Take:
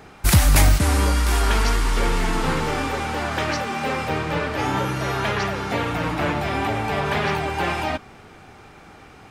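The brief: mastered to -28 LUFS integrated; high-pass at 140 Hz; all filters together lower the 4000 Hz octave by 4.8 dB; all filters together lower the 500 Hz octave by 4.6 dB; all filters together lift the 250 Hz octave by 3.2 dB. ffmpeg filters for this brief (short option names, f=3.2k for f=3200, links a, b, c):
-af "highpass=140,equalizer=f=250:t=o:g=7.5,equalizer=f=500:t=o:g=-8.5,equalizer=f=4k:t=o:g=-6.5,volume=-3.5dB"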